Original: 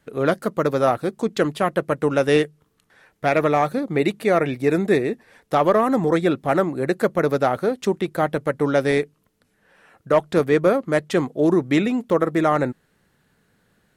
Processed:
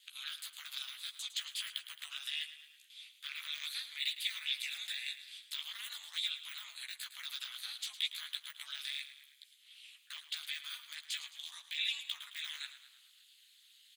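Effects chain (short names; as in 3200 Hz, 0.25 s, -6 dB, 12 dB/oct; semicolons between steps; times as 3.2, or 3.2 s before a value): spectral gate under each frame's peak -10 dB weak; de-esser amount 90%; notch 5600 Hz, Q 6.9; in parallel at -0.5 dB: compressor, threshold -35 dBFS, peak gain reduction 15 dB; on the sum: limiter -22.5 dBFS, peak gain reduction 11.5 dB; chorus voices 4, 0.18 Hz, delay 14 ms, depth 1.1 ms; ring modulator 120 Hz; ladder high-pass 3000 Hz, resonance 60%; frequency-shifting echo 0.108 s, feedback 53%, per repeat -37 Hz, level -13 dB; gain +15.5 dB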